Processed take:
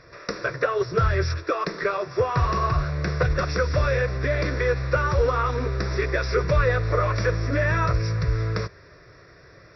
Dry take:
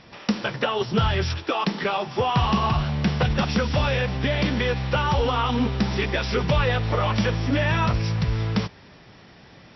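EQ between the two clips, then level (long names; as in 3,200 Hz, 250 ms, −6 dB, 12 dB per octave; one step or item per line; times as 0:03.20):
phaser with its sweep stopped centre 830 Hz, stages 6
+3.0 dB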